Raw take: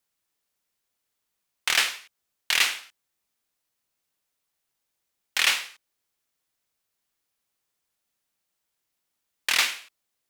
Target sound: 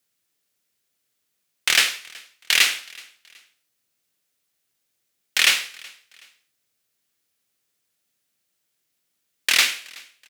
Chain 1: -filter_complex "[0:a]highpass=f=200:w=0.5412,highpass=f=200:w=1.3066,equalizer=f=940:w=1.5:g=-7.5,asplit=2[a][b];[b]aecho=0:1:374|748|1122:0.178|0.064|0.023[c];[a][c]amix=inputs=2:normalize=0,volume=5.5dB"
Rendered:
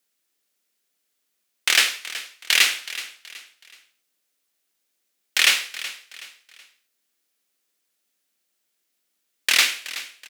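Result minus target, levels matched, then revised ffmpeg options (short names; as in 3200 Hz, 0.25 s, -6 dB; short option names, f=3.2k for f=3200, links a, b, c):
125 Hz band -8.0 dB; echo-to-direct +9.5 dB
-filter_complex "[0:a]highpass=f=83:w=0.5412,highpass=f=83:w=1.3066,equalizer=f=940:w=1.5:g=-7.5,asplit=2[a][b];[b]aecho=0:1:374|748:0.0596|0.0214[c];[a][c]amix=inputs=2:normalize=0,volume=5.5dB"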